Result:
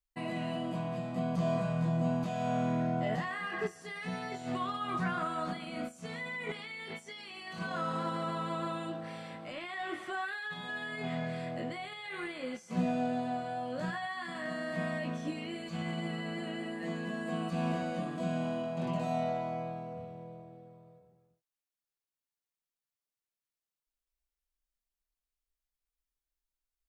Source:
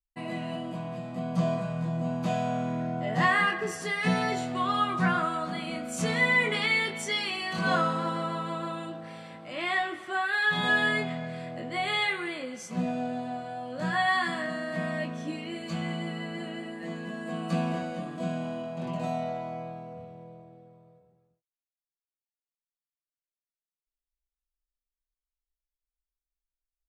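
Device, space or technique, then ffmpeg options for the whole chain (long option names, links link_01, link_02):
de-esser from a sidechain: -filter_complex "[0:a]asplit=2[link_01][link_02];[link_02]highpass=6200,apad=whole_len=1185753[link_03];[link_01][link_03]sidechaincompress=threshold=-57dB:ratio=16:attack=1.6:release=24"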